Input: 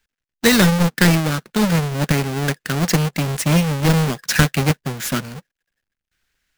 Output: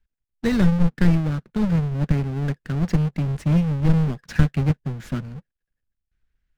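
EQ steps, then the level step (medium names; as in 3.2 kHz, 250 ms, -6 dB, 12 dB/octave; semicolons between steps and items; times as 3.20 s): RIAA curve playback; -11.5 dB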